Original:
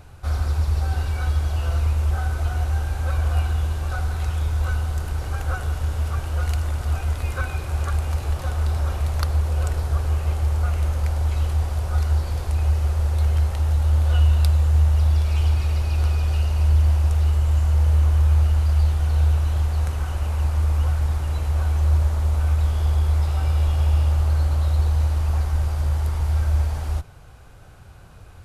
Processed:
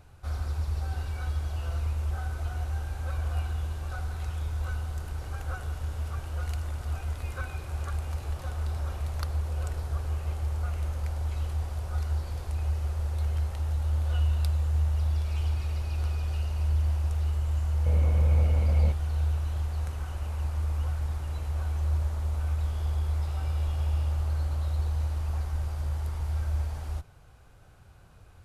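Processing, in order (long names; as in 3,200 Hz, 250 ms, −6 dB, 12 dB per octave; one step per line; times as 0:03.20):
0:17.85–0:18.91: hollow resonant body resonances 200/490/2,200 Hz, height 14 dB → 17 dB, ringing for 25 ms
level −9 dB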